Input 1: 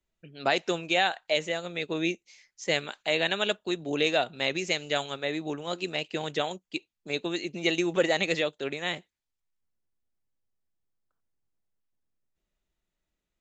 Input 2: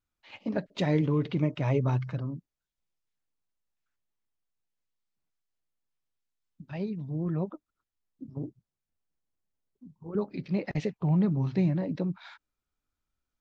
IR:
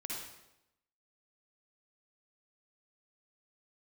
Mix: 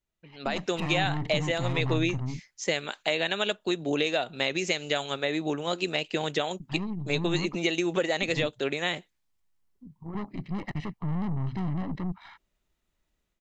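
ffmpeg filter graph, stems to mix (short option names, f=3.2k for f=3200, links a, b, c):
-filter_complex "[0:a]acompressor=threshold=-28dB:ratio=6,volume=-4dB[a];[1:a]lowpass=3.2k,aeval=exprs='(tanh(50.1*val(0)+0.65)-tanh(0.65))/50.1':c=same,aecho=1:1:1:0.65,volume=-6dB[b];[a][b]amix=inputs=2:normalize=0,dynaudnorm=f=360:g=3:m=9dB"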